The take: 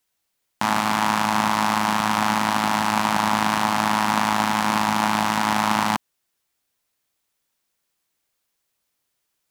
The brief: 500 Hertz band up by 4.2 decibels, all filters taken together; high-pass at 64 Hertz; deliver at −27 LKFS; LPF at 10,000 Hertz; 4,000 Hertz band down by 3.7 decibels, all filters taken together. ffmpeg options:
ffmpeg -i in.wav -af "highpass=64,lowpass=10000,equalizer=frequency=500:width_type=o:gain=6,equalizer=frequency=4000:width_type=o:gain=-5,volume=-6.5dB" out.wav

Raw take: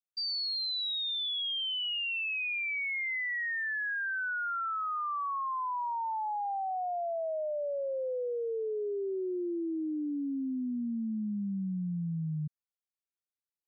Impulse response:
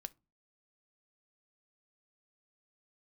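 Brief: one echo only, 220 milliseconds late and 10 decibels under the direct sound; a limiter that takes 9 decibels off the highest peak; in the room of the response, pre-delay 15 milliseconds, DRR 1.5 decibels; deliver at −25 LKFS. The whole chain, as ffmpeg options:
-filter_complex "[0:a]alimiter=level_in=15.5dB:limit=-24dB:level=0:latency=1,volume=-15.5dB,aecho=1:1:220:0.316,asplit=2[link_01][link_02];[1:a]atrim=start_sample=2205,adelay=15[link_03];[link_02][link_03]afir=irnorm=-1:irlink=0,volume=3dB[link_04];[link_01][link_04]amix=inputs=2:normalize=0,volume=14dB"

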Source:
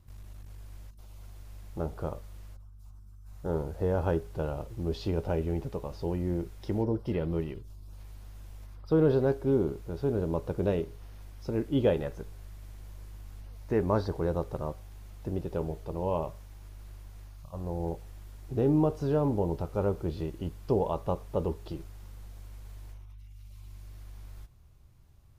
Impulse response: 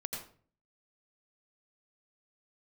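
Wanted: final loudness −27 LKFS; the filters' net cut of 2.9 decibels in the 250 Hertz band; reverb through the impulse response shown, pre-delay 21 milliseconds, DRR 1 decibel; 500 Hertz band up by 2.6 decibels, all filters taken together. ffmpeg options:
-filter_complex "[0:a]equalizer=frequency=250:width_type=o:gain=-6.5,equalizer=frequency=500:width_type=o:gain=5,asplit=2[link_01][link_02];[1:a]atrim=start_sample=2205,adelay=21[link_03];[link_02][link_03]afir=irnorm=-1:irlink=0,volume=-1.5dB[link_04];[link_01][link_04]amix=inputs=2:normalize=0,volume=1dB"

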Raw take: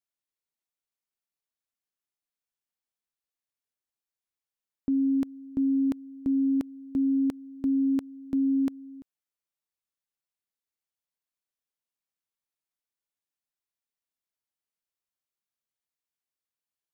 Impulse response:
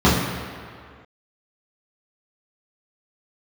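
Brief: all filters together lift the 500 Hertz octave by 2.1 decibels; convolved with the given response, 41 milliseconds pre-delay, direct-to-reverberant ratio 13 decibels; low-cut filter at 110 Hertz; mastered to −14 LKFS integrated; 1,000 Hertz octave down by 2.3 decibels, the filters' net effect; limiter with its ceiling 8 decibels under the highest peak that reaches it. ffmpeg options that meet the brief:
-filter_complex "[0:a]highpass=110,equalizer=frequency=500:width_type=o:gain=4.5,equalizer=frequency=1000:width_type=o:gain=-5,alimiter=level_in=3.5dB:limit=-24dB:level=0:latency=1,volume=-3.5dB,asplit=2[link_01][link_02];[1:a]atrim=start_sample=2205,adelay=41[link_03];[link_02][link_03]afir=irnorm=-1:irlink=0,volume=-37dB[link_04];[link_01][link_04]amix=inputs=2:normalize=0,volume=24.5dB"

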